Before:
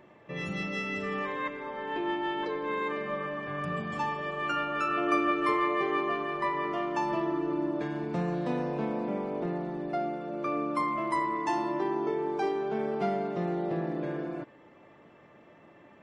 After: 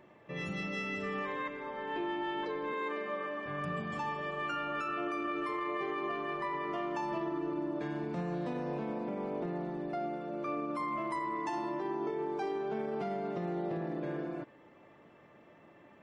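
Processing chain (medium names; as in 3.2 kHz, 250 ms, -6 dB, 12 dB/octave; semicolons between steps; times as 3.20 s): 2.73–3.46 s: high-pass 230 Hz 24 dB/octave; peak limiter -24.5 dBFS, peak gain reduction 10 dB; trim -3 dB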